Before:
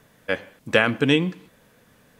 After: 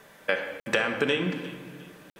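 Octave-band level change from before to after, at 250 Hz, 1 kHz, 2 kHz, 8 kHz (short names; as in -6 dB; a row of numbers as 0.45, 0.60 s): -8.0, -4.0, -3.5, 0.0 dB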